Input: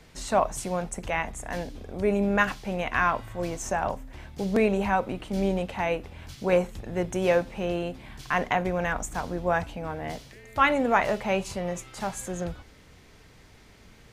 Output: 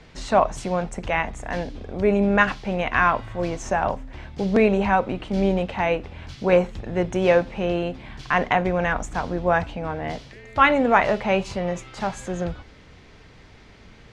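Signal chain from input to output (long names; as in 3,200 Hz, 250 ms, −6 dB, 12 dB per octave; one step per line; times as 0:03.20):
low-pass filter 4,800 Hz 12 dB per octave
level +5 dB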